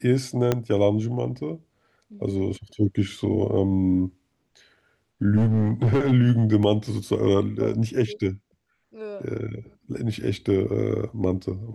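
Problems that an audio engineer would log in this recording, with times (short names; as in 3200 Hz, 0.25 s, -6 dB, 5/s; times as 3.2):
0.52 pop -8 dBFS
5.36–6.13 clipped -16 dBFS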